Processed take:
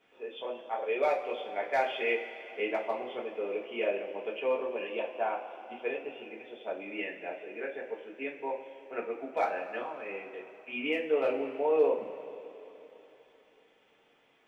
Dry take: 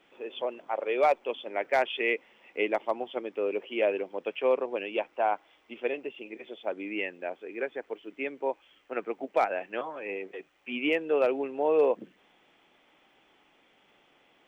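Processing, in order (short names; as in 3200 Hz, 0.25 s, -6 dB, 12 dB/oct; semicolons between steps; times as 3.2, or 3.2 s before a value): two-slope reverb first 0.27 s, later 3.4 s, from -18 dB, DRR -4 dB; gain -8.5 dB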